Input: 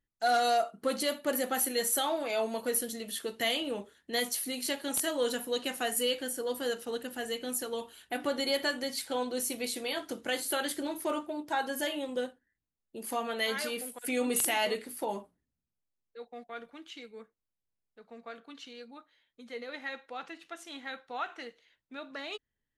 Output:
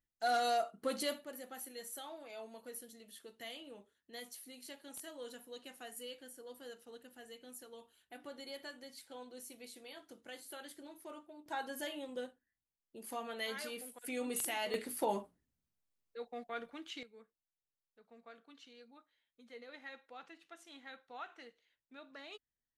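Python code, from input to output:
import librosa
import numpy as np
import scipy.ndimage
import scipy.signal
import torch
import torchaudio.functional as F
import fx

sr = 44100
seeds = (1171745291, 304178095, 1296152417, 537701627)

y = fx.gain(x, sr, db=fx.steps((0.0, -6.0), (1.24, -17.5), (11.46, -9.0), (14.74, 0.0), (17.03, -11.0)))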